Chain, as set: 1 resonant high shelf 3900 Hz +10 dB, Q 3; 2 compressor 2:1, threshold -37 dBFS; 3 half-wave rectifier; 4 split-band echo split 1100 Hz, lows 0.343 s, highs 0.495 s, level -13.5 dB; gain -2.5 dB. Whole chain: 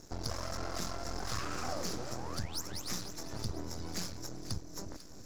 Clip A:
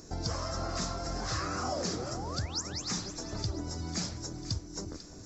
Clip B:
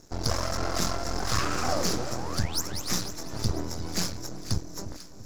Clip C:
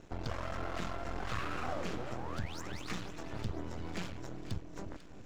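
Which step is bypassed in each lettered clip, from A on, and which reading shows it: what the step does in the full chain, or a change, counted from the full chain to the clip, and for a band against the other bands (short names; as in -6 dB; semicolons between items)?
3, crest factor change -2.0 dB; 2, mean gain reduction 7.5 dB; 1, 8 kHz band -12.5 dB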